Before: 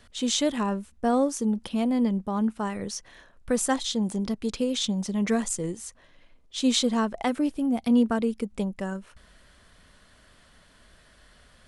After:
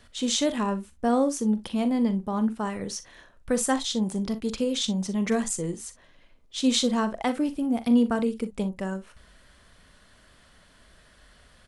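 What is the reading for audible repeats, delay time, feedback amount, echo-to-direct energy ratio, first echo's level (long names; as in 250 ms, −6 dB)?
1, 42 ms, repeats not evenly spaced, −11.5 dB, −13.0 dB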